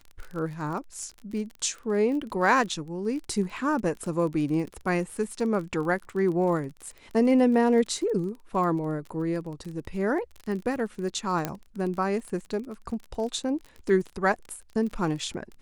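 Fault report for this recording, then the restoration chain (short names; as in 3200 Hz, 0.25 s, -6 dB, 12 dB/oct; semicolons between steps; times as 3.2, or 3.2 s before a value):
crackle 30/s -34 dBFS
11.45 pop -12 dBFS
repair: de-click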